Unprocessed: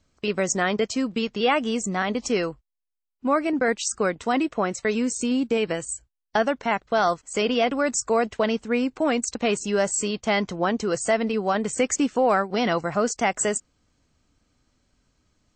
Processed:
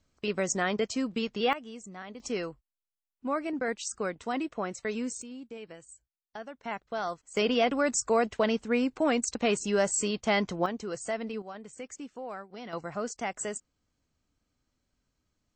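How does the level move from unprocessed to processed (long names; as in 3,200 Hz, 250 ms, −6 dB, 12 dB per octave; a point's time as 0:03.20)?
−5.5 dB
from 0:01.53 −18 dB
from 0:02.20 −9 dB
from 0:05.22 −20 dB
from 0:06.64 −12 dB
from 0:07.37 −3.5 dB
from 0:10.66 −11 dB
from 0:11.42 −19.5 dB
from 0:12.73 −11 dB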